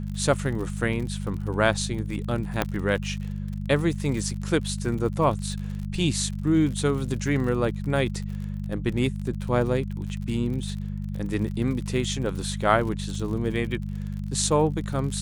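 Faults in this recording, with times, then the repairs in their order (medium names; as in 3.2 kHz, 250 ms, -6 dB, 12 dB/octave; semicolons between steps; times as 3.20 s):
crackle 49 per s -33 dBFS
hum 50 Hz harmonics 4 -31 dBFS
2.62 s: pop -8 dBFS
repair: de-click; de-hum 50 Hz, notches 4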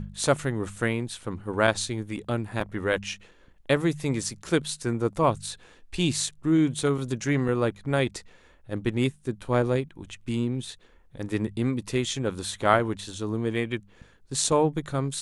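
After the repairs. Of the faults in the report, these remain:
2.62 s: pop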